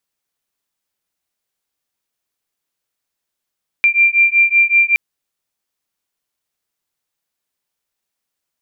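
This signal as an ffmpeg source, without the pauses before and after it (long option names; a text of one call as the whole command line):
ffmpeg -f lavfi -i "aevalsrc='0.237*(sin(2*PI*2370*t)+sin(2*PI*2375.3*t))':duration=1.12:sample_rate=44100" out.wav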